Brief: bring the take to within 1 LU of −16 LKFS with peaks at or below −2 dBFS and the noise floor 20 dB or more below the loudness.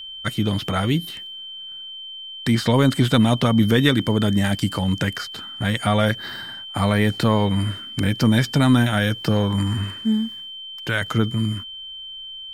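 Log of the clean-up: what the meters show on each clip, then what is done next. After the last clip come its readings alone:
interfering tone 3,100 Hz; level of the tone −33 dBFS; integrated loudness −21.0 LKFS; sample peak −4.0 dBFS; target loudness −16.0 LKFS
→ notch filter 3,100 Hz, Q 30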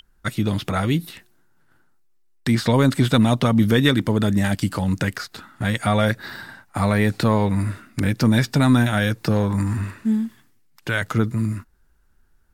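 interfering tone none found; integrated loudness −21.0 LKFS; sample peak −4.0 dBFS; target loudness −16.0 LKFS
→ level +5 dB
brickwall limiter −2 dBFS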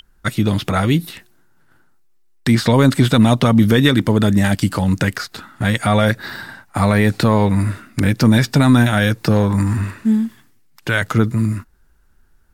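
integrated loudness −16.0 LKFS; sample peak −2.0 dBFS; background noise floor −54 dBFS

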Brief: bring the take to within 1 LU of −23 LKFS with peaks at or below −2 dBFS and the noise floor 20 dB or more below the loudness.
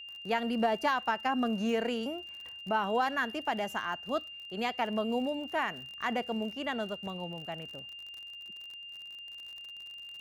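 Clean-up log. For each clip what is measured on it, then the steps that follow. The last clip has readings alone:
crackle rate 43 per second; interfering tone 2,800 Hz; level of the tone −43 dBFS; integrated loudness −34.0 LKFS; sample peak −17.0 dBFS; target loudness −23.0 LKFS
→ click removal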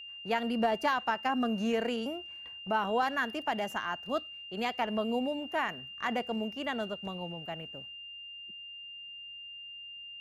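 crackle rate 0.20 per second; interfering tone 2,800 Hz; level of the tone −43 dBFS
→ notch filter 2,800 Hz, Q 30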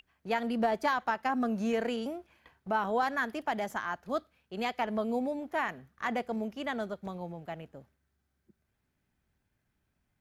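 interfering tone none found; integrated loudness −33.0 LKFS; sample peak −17.0 dBFS; target loudness −23.0 LKFS
→ level +10 dB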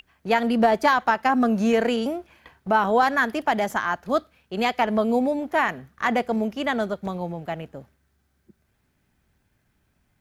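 integrated loudness −23.0 LKFS; sample peak −7.0 dBFS; background noise floor −69 dBFS

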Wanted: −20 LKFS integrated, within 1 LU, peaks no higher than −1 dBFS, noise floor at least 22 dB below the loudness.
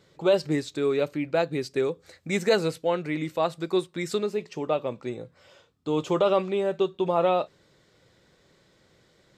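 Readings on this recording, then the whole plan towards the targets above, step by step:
integrated loudness −26.5 LKFS; sample peak −10.5 dBFS; target loudness −20.0 LKFS
→ level +6.5 dB

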